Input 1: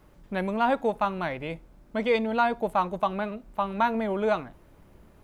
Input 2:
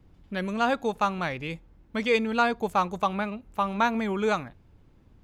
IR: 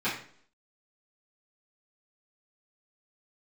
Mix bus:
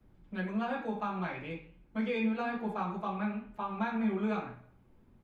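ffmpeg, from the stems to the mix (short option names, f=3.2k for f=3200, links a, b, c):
-filter_complex "[0:a]volume=-13.5dB,asplit=2[a][b];[1:a]aemphasis=mode=reproduction:type=75kf,adelay=5.8,volume=-3.5dB,asplit=2[c][d];[d]volume=-10dB[e];[b]apad=whole_len=231303[f];[c][f]sidechaincompress=threshold=-45dB:ratio=8:attack=16:release=520[g];[2:a]atrim=start_sample=2205[h];[e][h]afir=irnorm=-1:irlink=0[i];[a][g][i]amix=inputs=3:normalize=0,acrossover=split=270|3000[j][k][l];[k]acompressor=threshold=-27dB:ratio=6[m];[j][m][l]amix=inputs=3:normalize=0,flanger=delay=7.2:depth=4.9:regen=-87:speed=1.1:shape=triangular"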